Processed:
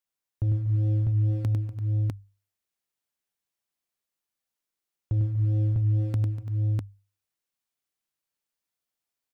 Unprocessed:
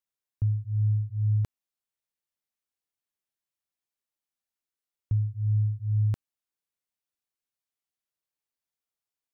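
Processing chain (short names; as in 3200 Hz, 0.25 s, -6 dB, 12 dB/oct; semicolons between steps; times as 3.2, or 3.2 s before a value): dynamic EQ 280 Hz, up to +7 dB, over -53 dBFS, Q 2.7; sample leveller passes 1; on a send: tapped delay 0.1/0.243/0.339/0.65 s -7/-17.5/-16.5/-4.5 dB; on the sum: limiter -22 dBFS, peak gain reduction 4 dB; notches 50/100 Hz; gain +3.5 dB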